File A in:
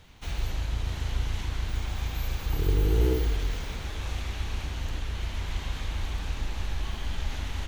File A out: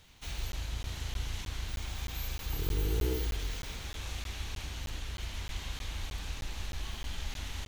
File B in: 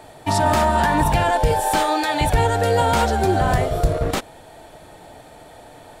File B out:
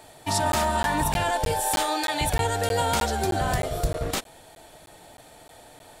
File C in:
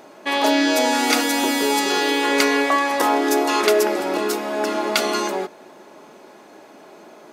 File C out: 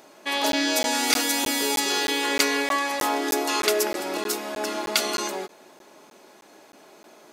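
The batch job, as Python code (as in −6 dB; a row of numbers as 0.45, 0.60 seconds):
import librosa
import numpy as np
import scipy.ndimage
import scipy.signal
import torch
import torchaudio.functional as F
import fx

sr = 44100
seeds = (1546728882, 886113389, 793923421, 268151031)

y = fx.high_shelf(x, sr, hz=2700.0, db=9.5)
y = fx.buffer_crackle(y, sr, first_s=0.52, period_s=0.31, block=512, kind='zero')
y = y * librosa.db_to_amplitude(-7.5)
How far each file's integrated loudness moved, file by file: −6.5, −6.0, −4.5 LU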